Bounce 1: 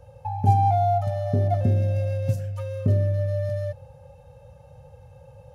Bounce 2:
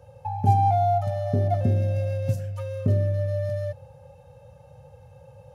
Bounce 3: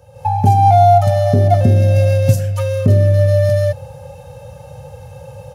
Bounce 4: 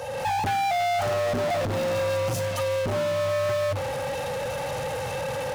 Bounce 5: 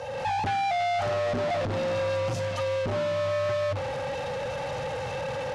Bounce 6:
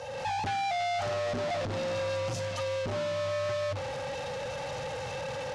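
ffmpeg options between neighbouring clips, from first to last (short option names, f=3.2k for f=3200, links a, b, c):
-af "highpass=77"
-af "highshelf=f=3.3k:g=7.5,alimiter=limit=-14.5dB:level=0:latency=1:release=361,dynaudnorm=f=120:g=3:m=11dB,volume=3dB"
-filter_complex "[0:a]bandreject=f=50:t=h:w=6,bandreject=f=100:t=h:w=6,volume=20dB,asoftclip=hard,volume=-20dB,asplit=2[a][b];[b]highpass=f=720:p=1,volume=32dB,asoftclip=type=tanh:threshold=-19.5dB[c];[a][c]amix=inputs=2:normalize=0,lowpass=f=5.6k:p=1,volume=-6dB,volume=-3.5dB"
-af "lowpass=5.5k,volume=-2dB"
-af "equalizer=f=6.4k:w=0.62:g=6,volume=-4.5dB"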